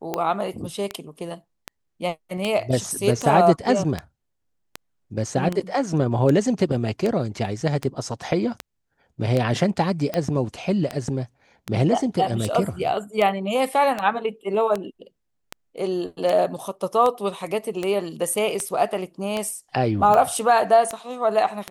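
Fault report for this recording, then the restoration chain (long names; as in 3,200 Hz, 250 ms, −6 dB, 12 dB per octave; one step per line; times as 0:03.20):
scratch tick 78 rpm −11 dBFS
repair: click removal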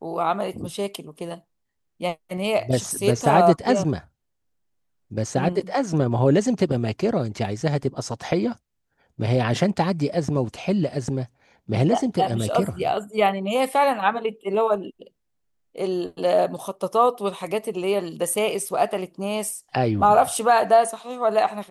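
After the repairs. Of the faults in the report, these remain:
none of them is left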